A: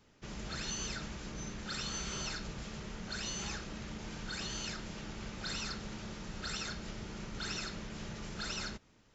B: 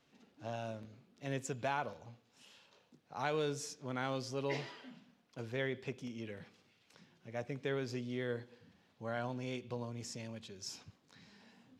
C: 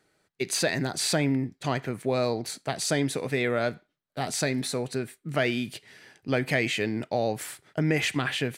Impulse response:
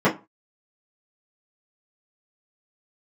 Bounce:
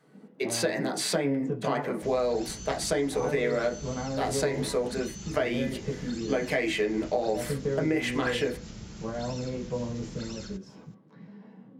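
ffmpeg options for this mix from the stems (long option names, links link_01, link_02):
-filter_complex "[0:a]highpass=48,bass=frequency=250:gain=9,treble=frequency=4000:gain=9,acrossover=split=390[link_01][link_02];[link_02]acompressor=threshold=-40dB:ratio=3[link_03];[link_01][link_03]amix=inputs=2:normalize=0,adelay=1800,volume=-4.5dB[link_04];[1:a]lowpass=frequency=1000:poles=1,acompressor=threshold=-39dB:ratio=6,volume=-0.5dB,asplit=2[link_05][link_06];[link_06]volume=-11dB[link_07];[2:a]highpass=300,volume=-3.5dB,asplit=2[link_08][link_09];[link_09]volume=-15.5dB[link_10];[3:a]atrim=start_sample=2205[link_11];[link_07][link_10]amix=inputs=2:normalize=0[link_12];[link_12][link_11]afir=irnorm=-1:irlink=0[link_13];[link_04][link_05][link_08][link_13]amix=inputs=4:normalize=0,acompressor=threshold=-23dB:ratio=6"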